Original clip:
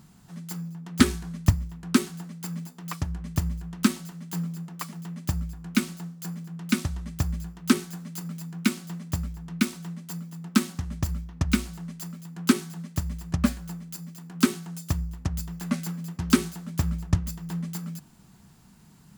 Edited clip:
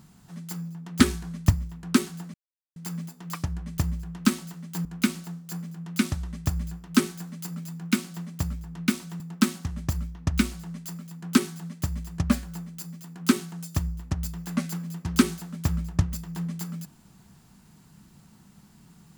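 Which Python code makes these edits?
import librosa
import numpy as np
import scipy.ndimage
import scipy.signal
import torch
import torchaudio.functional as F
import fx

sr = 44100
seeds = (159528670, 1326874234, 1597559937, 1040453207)

y = fx.edit(x, sr, fx.insert_silence(at_s=2.34, length_s=0.42),
    fx.cut(start_s=4.43, length_s=1.15),
    fx.cut(start_s=9.93, length_s=0.41), tone=tone)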